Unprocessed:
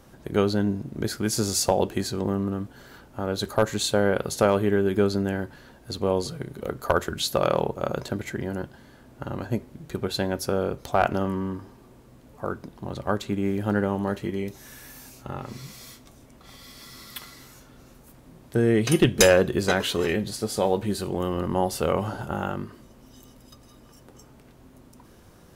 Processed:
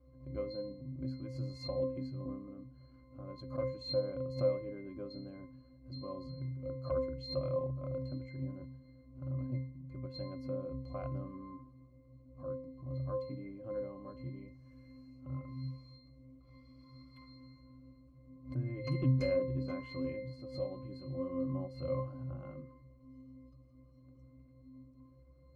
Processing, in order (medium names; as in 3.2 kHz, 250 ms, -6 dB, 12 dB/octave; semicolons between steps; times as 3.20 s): pitch-class resonator C, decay 0.56 s; swell ahead of each attack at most 150 dB/s; trim +4.5 dB